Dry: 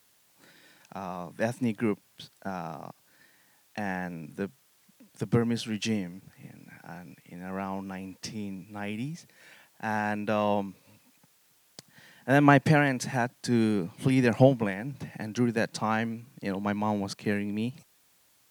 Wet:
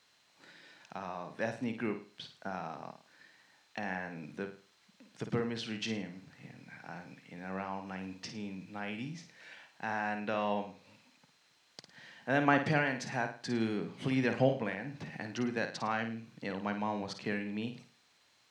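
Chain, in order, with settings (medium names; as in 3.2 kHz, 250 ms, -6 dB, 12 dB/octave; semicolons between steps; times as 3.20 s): tilt EQ +2 dB/octave; in parallel at +2.5 dB: compression, threshold -39 dBFS, peak gain reduction 22.5 dB; on the sum: whistle 4.1 kHz -60 dBFS; distance through air 150 m; flutter echo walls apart 9.1 m, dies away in 0.39 s; trim -7 dB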